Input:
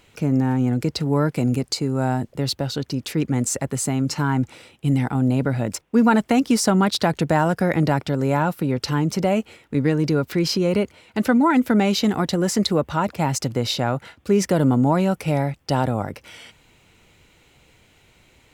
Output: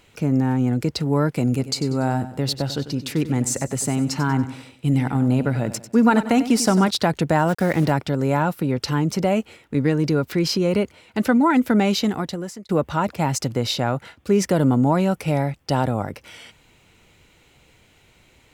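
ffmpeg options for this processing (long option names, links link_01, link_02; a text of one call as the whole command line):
ffmpeg -i in.wav -filter_complex "[0:a]asplit=3[link_01][link_02][link_03];[link_01]afade=type=out:start_time=1.56:duration=0.02[link_04];[link_02]aecho=1:1:95|190|285|380:0.224|0.0895|0.0358|0.0143,afade=type=in:start_time=1.56:duration=0.02,afade=type=out:start_time=6.89:duration=0.02[link_05];[link_03]afade=type=in:start_time=6.89:duration=0.02[link_06];[link_04][link_05][link_06]amix=inputs=3:normalize=0,asplit=3[link_07][link_08][link_09];[link_07]afade=type=out:start_time=7.47:duration=0.02[link_10];[link_08]acrusher=bits=5:mix=0:aa=0.5,afade=type=in:start_time=7.47:duration=0.02,afade=type=out:start_time=7.9:duration=0.02[link_11];[link_09]afade=type=in:start_time=7.9:duration=0.02[link_12];[link_10][link_11][link_12]amix=inputs=3:normalize=0,asplit=2[link_13][link_14];[link_13]atrim=end=12.69,asetpts=PTS-STARTPTS,afade=type=out:start_time=11.93:duration=0.76[link_15];[link_14]atrim=start=12.69,asetpts=PTS-STARTPTS,afade=type=in:duration=0.004:curve=hsin[link_16];[link_15][link_16]concat=n=2:v=0:a=1" out.wav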